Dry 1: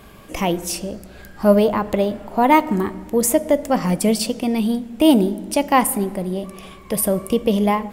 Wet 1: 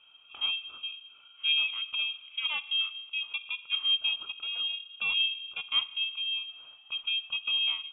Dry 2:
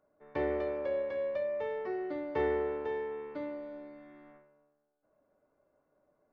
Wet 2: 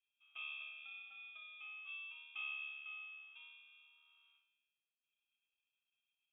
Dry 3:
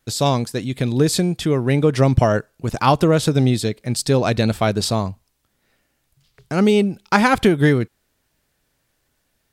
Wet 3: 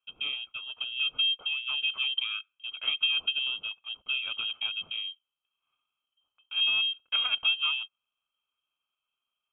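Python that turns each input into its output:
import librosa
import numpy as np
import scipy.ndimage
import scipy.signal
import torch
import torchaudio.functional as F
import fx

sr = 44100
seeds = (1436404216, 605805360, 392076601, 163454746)

y = x * np.sin(2.0 * np.pi * 480.0 * np.arange(len(x)) / sr)
y = fx.vowel_filter(y, sr, vowel='u')
y = fx.freq_invert(y, sr, carrier_hz=3500)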